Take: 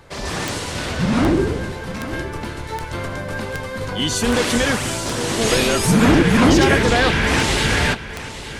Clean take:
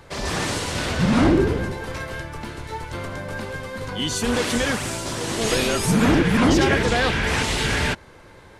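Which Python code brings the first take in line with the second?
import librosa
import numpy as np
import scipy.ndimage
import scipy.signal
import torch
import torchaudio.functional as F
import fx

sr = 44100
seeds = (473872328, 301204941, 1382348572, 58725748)

y = fx.fix_declick_ar(x, sr, threshold=10.0)
y = fx.fix_echo_inverse(y, sr, delay_ms=861, level_db=-13.5)
y = fx.gain(y, sr, db=fx.steps((0.0, 0.0), (2.13, -4.0)))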